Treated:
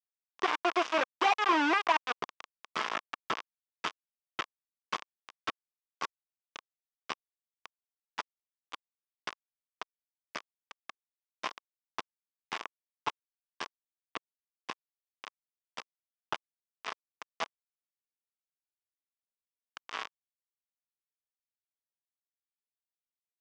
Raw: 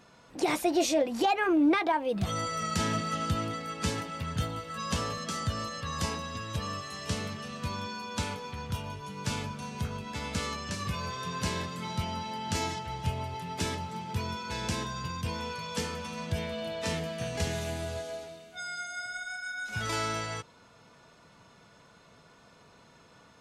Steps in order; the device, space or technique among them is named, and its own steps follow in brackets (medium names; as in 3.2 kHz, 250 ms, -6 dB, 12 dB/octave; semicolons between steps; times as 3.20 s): hand-held game console (bit crusher 4-bit; cabinet simulation 480–4600 Hz, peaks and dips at 550 Hz -5 dB, 1.1 kHz +8 dB, 4.2 kHz -9 dB); trim -1.5 dB